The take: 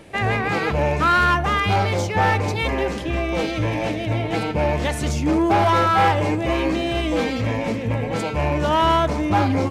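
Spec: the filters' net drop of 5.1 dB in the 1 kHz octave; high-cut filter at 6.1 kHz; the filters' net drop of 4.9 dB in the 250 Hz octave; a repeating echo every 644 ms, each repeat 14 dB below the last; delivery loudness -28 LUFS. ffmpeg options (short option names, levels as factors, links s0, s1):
-af "lowpass=6100,equalizer=f=250:t=o:g=-6.5,equalizer=f=1000:t=o:g=-6.5,aecho=1:1:644|1288:0.2|0.0399,volume=0.596"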